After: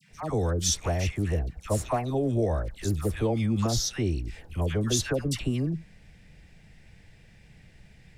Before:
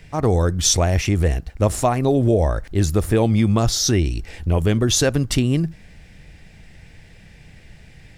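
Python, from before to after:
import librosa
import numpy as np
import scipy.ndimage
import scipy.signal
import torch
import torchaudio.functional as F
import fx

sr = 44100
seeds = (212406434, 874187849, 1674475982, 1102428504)

y = fx.dispersion(x, sr, late='lows', ms=103.0, hz=1200.0)
y = fx.dmg_noise_band(y, sr, seeds[0], low_hz=120.0, high_hz=210.0, level_db=-55.0)
y = F.gain(torch.from_numpy(y), -9.0).numpy()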